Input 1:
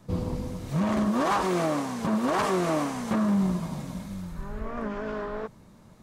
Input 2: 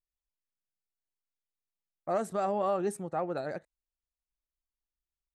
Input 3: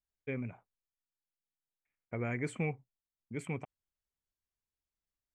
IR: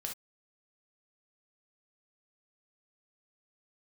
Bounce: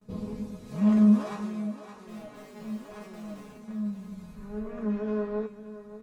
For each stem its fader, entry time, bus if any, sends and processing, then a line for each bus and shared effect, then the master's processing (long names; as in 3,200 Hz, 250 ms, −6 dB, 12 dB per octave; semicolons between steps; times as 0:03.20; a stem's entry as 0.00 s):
+2.0 dB, 0.00 s, no send, echo send −14 dB, noise gate with hold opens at −48 dBFS; hollow resonant body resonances 220/440/2,500/3,900 Hz, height 8 dB; automatic ducking −23 dB, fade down 0.95 s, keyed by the second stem
−1.0 dB, 0.00 s, no send, echo send −7 dB, comparator with hysteresis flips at −34.5 dBFS; tube saturation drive 35 dB, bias 0.5
−18.0 dB, 0.00 s, no send, no echo send, high-pass filter 240 Hz 12 dB per octave; spectral tilt −4 dB per octave; leveller curve on the samples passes 5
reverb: not used
echo: single-tap delay 569 ms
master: tuned comb filter 210 Hz, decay 0.24 s, harmonics all, mix 90%